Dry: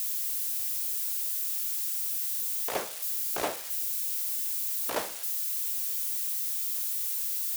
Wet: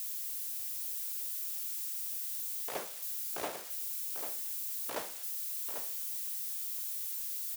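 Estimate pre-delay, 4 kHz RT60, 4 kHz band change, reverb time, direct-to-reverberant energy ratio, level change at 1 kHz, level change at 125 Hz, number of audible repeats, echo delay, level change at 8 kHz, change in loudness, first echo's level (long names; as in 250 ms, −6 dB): no reverb audible, no reverb audible, −7.0 dB, no reverb audible, no reverb audible, −7.0 dB, can't be measured, 1, 794 ms, −7.0 dB, −7.0 dB, −8.5 dB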